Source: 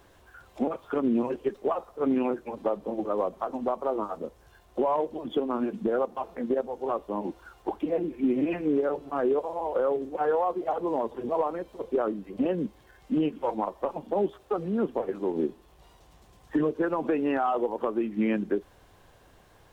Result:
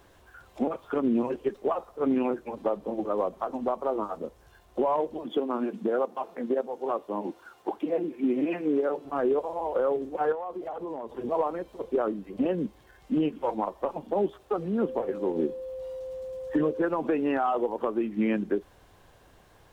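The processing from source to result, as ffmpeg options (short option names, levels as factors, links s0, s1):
-filter_complex "[0:a]asettb=1/sr,asplit=3[s0][s1][s2];[s0]atrim=end=5.234[s3];[s1]atrim=start=5.23:end=9.05,asetpts=PTS-STARTPTS,afade=t=in:d=0.004:c=qsin,afade=t=out:st=3.816:d=0.004:c=qsin,highpass=190[s4];[s2]atrim=start=9.046[s5];[s3][s4]acrossfade=d=0.004:c1=hsin:c2=qsin[s6];[s6][s5]acrossfade=d=0.004:c1=qsin:c2=hsin,asettb=1/sr,asplit=3[s7][s8][s9];[s7]atrim=end=10.324[s10];[s8]atrim=start=10.32:end=11.1,asetpts=PTS-STARTPTS,afade=t=in:d=0.004:c=qsin,afade=t=out:st=0.776:d=0.004:c=qsin,acompressor=threshold=0.0251:ratio=5:attack=3.2:release=140:knee=1:detection=peak[s11];[s9]atrim=start=11.096[s12];[s10][s11]acrossfade=d=0.004:c1=hsin:c2=qsin[s13];[s13][s12]acrossfade=d=0.004:c1=qsin:c2=hsin,asettb=1/sr,asplit=3[s14][s15][s16];[s14]atrim=end=14.814[s17];[s15]atrim=start=14.81:end=16.87,asetpts=PTS-STARTPTS,afade=t=in:d=0.004:c=qsin,afade=t=out:st=2.056:d=0.004:c=qsin,aeval=exprs='val(0)+0.02*sin(2*PI*520*n/s)':c=same[s18];[s16]atrim=start=16.866[s19];[s17][s18]acrossfade=d=0.004:c1=hsin:c2=qsin[s20];[s20][s19]acrossfade=d=0.004:c1=qsin:c2=hsin"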